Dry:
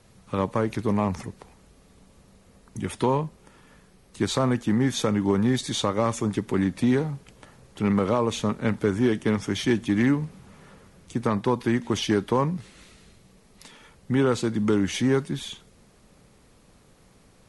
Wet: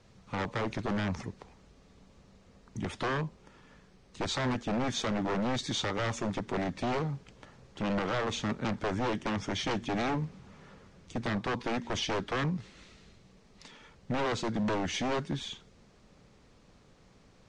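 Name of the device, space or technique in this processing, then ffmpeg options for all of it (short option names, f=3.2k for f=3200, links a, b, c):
synthesiser wavefolder: -af "aeval=exprs='0.0841*(abs(mod(val(0)/0.0841+3,4)-2)-1)':c=same,lowpass=f=6.8k:w=0.5412,lowpass=f=6.8k:w=1.3066,volume=-3.5dB"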